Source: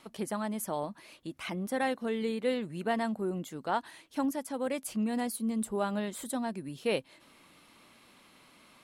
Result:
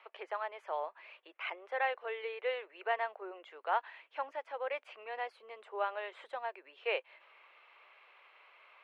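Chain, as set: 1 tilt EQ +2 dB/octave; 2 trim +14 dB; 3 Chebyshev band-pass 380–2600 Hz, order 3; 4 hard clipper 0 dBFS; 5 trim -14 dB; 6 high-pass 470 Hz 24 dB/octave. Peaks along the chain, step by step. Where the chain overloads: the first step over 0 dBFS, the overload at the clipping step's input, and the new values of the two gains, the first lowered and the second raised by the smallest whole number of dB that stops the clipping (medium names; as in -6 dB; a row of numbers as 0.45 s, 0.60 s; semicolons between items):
-16.5 dBFS, -2.5 dBFS, -4.0 dBFS, -4.0 dBFS, -18.0 dBFS, -19.0 dBFS; nothing clips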